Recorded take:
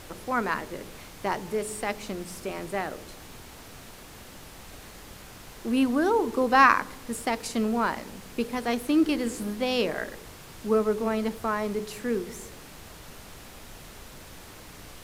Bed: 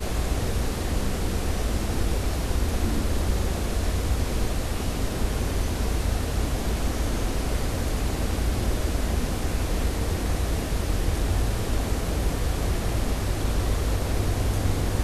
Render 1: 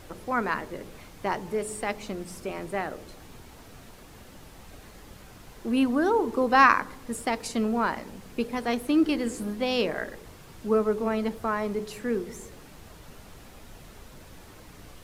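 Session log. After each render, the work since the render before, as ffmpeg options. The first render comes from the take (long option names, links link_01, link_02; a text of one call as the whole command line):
ffmpeg -i in.wav -af "afftdn=noise_reduction=6:noise_floor=-46" out.wav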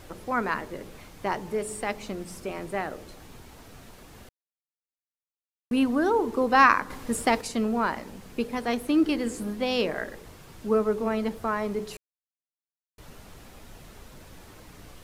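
ffmpeg -i in.wav -filter_complex "[0:a]asplit=7[link_01][link_02][link_03][link_04][link_05][link_06][link_07];[link_01]atrim=end=4.29,asetpts=PTS-STARTPTS,afade=type=out:start_time=4.286:duration=0.004:curve=hsin[link_08];[link_02]atrim=start=4.29:end=5.71,asetpts=PTS-STARTPTS,volume=0[link_09];[link_03]atrim=start=5.71:end=6.902,asetpts=PTS-STARTPTS,afade=type=in:duration=0.004:curve=hsin[link_10];[link_04]atrim=start=6.898:end=7.412,asetpts=PTS-STARTPTS,volume=5dB[link_11];[link_05]atrim=start=7.408:end=11.97,asetpts=PTS-STARTPTS,afade=type=out:start_time=4.558:duration=0.004:curve=hsin[link_12];[link_06]atrim=start=11.97:end=12.98,asetpts=PTS-STARTPTS,volume=0[link_13];[link_07]atrim=start=12.98,asetpts=PTS-STARTPTS,afade=type=in:duration=0.004:curve=hsin[link_14];[link_08][link_09][link_10]concat=n=3:v=0:a=1[link_15];[link_15][link_11]acrossfade=duration=0.004:curve1=hsin:curve2=hsin[link_16];[link_12][link_13][link_14]concat=n=3:v=0:a=1[link_17];[link_16][link_17]acrossfade=duration=0.004:curve1=hsin:curve2=hsin" out.wav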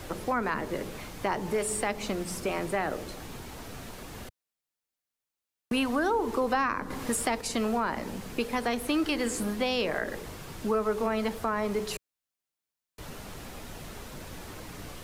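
ffmpeg -i in.wav -filter_complex "[0:a]acrossover=split=100|590[link_01][link_02][link_03];[link_01]acompressor=threshold=-50dB:ratio=4[link_04];[link_02]acompressor=threshold=-37dB:ratio=4[link_05];[link_03]acompressor=threshold=-33dB:ratio=4[link_06];[link_04][link_05][link_06]amix=inputs=3:normalize=0,asplit=2[link_07][link_08];[link_08]alimiter=level_in=2.5dB:limit=-24dB:level=0:latency=1,volume=-2.5dB,volume=0.5dB[link_09];[link_07][link_09]amix=inputs=2:normalize=0" out.wav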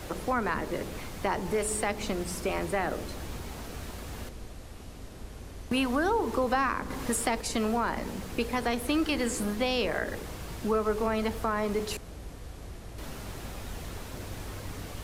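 ffmpeg -i in.wav -i bed.wav -filter_complex "[1:a]volume=-17.5dB[link_01];[0:a][link_01]amix=inputs=2:normalize=0" out.wav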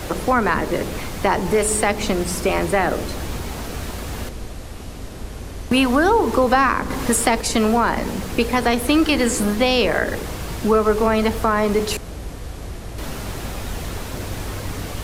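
ffmpeg -i in.wav -af "volume=11dB" out.wav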